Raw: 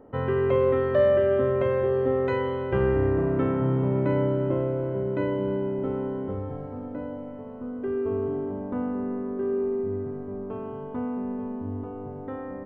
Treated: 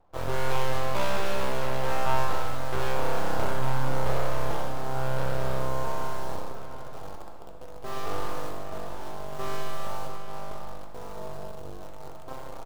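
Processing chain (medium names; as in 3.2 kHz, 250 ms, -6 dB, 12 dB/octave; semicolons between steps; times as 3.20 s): feedback comb 130 Hz, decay 0.51 s, harmonics all, mix 70%; LFO notch sine 1 Hz 620–2000 Hz; Chebyshev shaper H 6 -9 dB, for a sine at -17.5 dBFS; in parallel at -7 dB: word length cut 6-bit, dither none; on the sum: echo from a far wall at 120 m, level -10 dB; reverse; upward compressor, threshold -33 dBFS; reverse; full-wave rectifier; graphic EQ 125/250/2000 Hz -4/-8/-7 dB; gated-style reverb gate 480 ms falling, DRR 4.5 dB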